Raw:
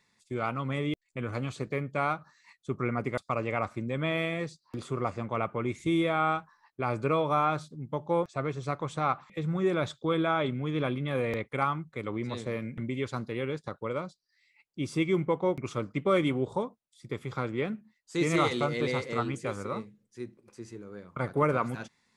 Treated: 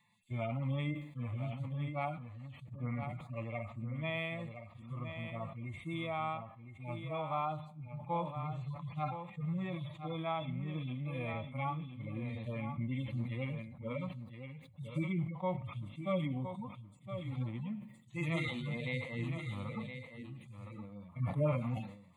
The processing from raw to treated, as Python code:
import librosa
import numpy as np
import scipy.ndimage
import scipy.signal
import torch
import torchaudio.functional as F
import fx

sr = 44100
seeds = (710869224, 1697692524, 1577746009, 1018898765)

p1 = fx.hpss_only(x, sr, part='harmonic')
p2 = fx.fixed_phaser(p1, sr, hz=1500.0, stages=6)
p3 = fx.rev_double_slope(p2, sr, seeds[0], early_s=0.48, late_s=1.7, knee_db=-18, drr_db=16.5)
p4 = fx.rider(p3, sr, range_db=10, speed_s=2.0)
p5 = p4 + fx.echo_single(p4, sr, ms=1015, db=-9.0, dry=0)
p6 = fx.sustainer(p5, sr, db_per_s=87.0)
y = F.gain(torch.from_numpy(p6), -3.5).numpy()